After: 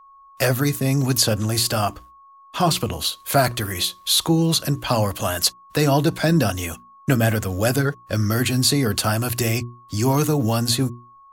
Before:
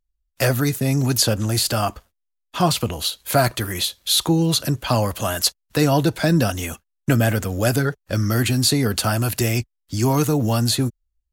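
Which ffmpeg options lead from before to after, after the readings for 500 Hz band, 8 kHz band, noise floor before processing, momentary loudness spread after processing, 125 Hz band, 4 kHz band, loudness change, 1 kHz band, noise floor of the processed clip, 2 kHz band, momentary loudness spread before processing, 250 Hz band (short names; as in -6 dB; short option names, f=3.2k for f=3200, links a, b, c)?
0.0 dB, 0.0 dB, -77 dBFS, 6 LU, -1.0 dB, 0.0 dB, -0.5 dB, 0.0 dB, -49 dBFS, 0.0 dB, 6 LU, -0.5 dB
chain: -af "aeval=exprs='val(0)+0.00501*sin(2*PI*1100*n/s)':c=same,bandreject=f=60:t=h:w=6,bandreject=f=120:t=h:w=6,bandreject=f=180:t=h:w=6,bandreject=f=240:t=h:w=6,bandreject=f=300:t=h:w=6,bandreject=f=360:t=h:w=6"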